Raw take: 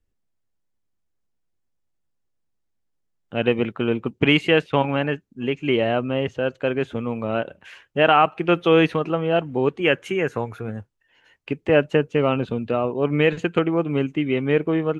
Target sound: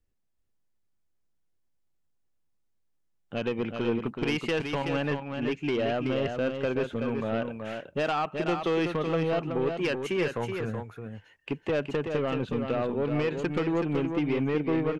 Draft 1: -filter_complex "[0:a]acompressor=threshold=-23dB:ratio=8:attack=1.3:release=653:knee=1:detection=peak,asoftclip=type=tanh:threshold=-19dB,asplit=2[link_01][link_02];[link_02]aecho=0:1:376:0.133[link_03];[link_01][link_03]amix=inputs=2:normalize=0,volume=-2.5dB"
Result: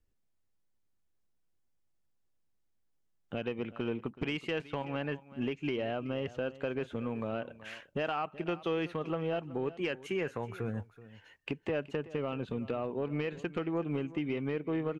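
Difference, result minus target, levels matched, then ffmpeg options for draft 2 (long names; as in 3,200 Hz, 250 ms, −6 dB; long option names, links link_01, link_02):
downward compressor: peak gain reduction +8.5 dB; echo-to-direct −11.5 dB
-filter_complex "[0:a]acompressor=threshold=-13.5dB:ratio=8:attack=1.3:release=653:knee=1:detection=peak,asoftclip=type=tanh:threshold=-19dB,asplit=2[link_01][link_02];[link_02]aecho=0:1:376:0.501[link_03];[link_01][link_03]amix=inputs=2:normalize=0,volume=-2.5dB"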